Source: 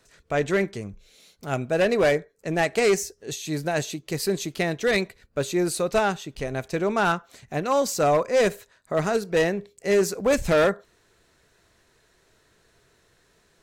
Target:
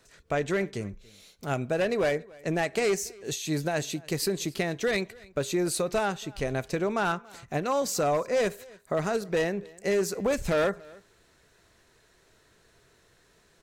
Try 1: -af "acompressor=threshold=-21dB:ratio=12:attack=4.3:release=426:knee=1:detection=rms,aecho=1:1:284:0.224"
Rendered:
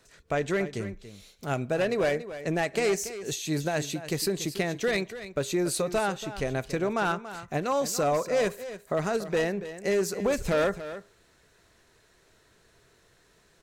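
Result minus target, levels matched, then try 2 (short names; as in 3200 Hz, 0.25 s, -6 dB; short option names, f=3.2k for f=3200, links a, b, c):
echo-to-direct +11 dB
-af "acompressor=threshold=-21dB:ratio=12:attack=4.3:release=426:knee=1:detection=rms,aecho=1:1:284:0.0631"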